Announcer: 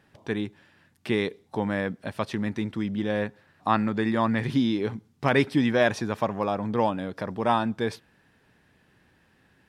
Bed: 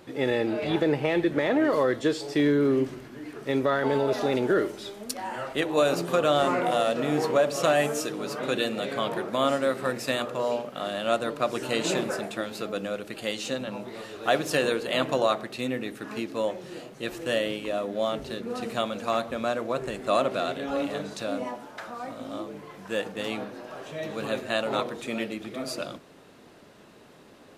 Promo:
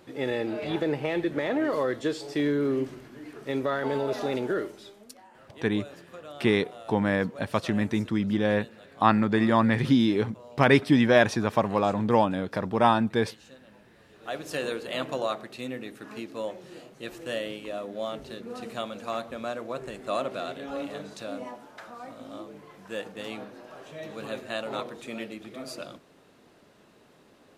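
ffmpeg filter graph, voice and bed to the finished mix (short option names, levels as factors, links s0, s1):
-filter_complex "[0:a]adelay=5350,volume=1.33[s0];[1:a]volume=3.98,afade=t=out:st=4.35:d=0.93:silence=0.133352,afade=t=in:st=14.06:d=0.61:silence=0.16788[s1];[s0][s1]amix=inputs=2:normalize=0"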